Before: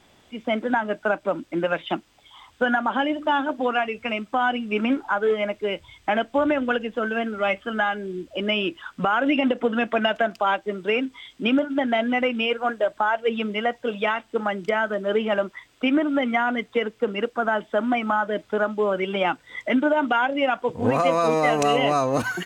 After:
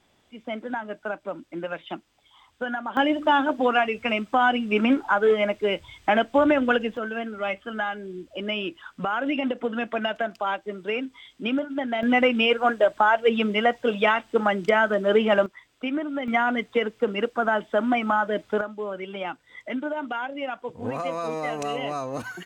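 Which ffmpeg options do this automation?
ffmpeg -i in.wav -af "asetnsamples=nb_out_samples=441:pad=0,asendcmd='2.97 volume volume 2dB;6.97 volume volume -5dB;12.03 volume volume 3dB;15.46 volume volume -7dB;16.28 volume volume 0dB;18.61 volume volume -9dB',volume=-8dB" out.wav

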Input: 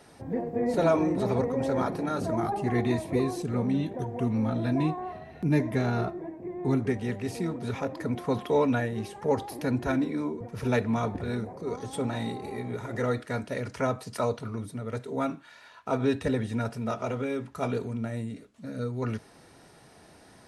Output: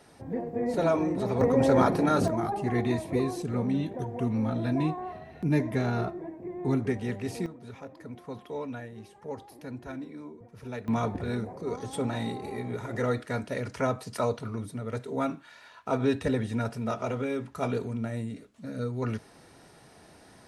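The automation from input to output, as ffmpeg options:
ffmpeg -i in.wav -af "asetnsamples=nb_out_samples=441:pad=0,asendcmd='1.41 volume volume 6dB;2.28 volume volume -1dB;7.46 volume volume -12dB;10.88 volume volume 0dB',volume=-2dB" out.wav

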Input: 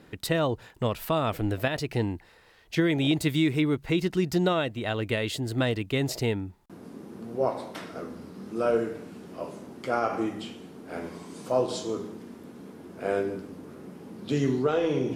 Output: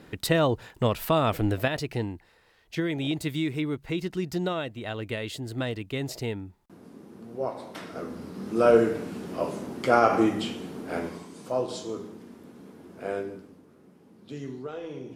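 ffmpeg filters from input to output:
ffmpeg -i in.wav -af "volume=14.5dB,afade=type=out:start_time=1.4:duration=0.73:silence=0.421697,afade=type=in:start_time=7.55:duration=1.32:silence=0.266073,afade=type=out:start_time=10.81:duration=0.5:silence=0.316228,afade=type=out:start_time=13.01:duration=0.65:silence=0.354813" out.wav

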